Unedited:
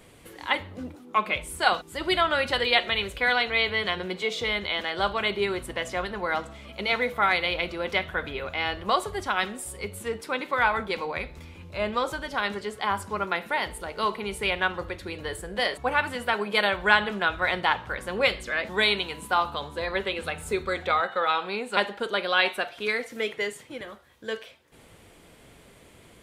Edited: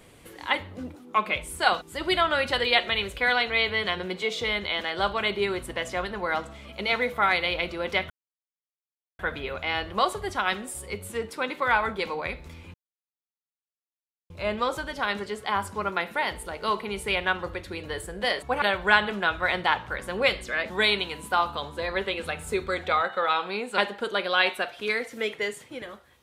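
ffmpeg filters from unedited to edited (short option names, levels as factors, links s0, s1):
-filter_complex "[0:a]asplit=4[s0][s1][s2][s3];[s0]atrim=end=8.1,asetpts=PTS-STARTPTS,afade=t=out:st=8.096:d=0.004:c=hsin,apad=pad_dur=1.09[s4];[s1]atrim=start=8.1:end=11.65,asetpts=PTS-STARTPTS,afade=t=in:d=0.004:c=hsin,afade=t=out:st=3.546:d=0.004:c=hsin,apad=pad_dur=1.56[s5];[s2]atrim=start=11.65:end=15.972,asetpts=PTS-STARTPTS,afade=t=in:d=0.004:c=hsin[s6];[s3]atrim=start=16.608[s7];[s4][s5][s6]concat=n=3:v=0:a=1[s8];[s8][s7]acrossfade=d=0.004:c1=hsin:c2=hsin"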